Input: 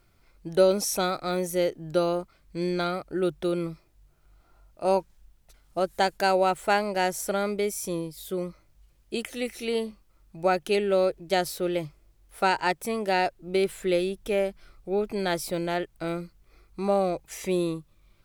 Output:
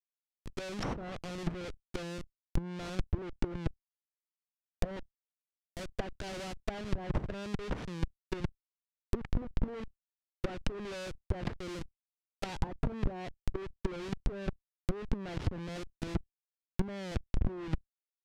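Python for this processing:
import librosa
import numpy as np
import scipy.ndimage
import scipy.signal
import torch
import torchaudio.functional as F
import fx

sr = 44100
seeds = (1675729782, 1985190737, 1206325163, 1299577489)

y = fx.schmitt(x, sr, flips_db=-29.5)
y = fx.peak_eq(y, sr, hz=810.0, db=-7.0, octaves=2.9)
y = fx.level_steps(y, sr, step_db=15)
y = fx.env_lowpass_down(y, sr, base_hz=1000.0, full_db=-32.0)
y = y * librosa.db_to_amplitude(5.0)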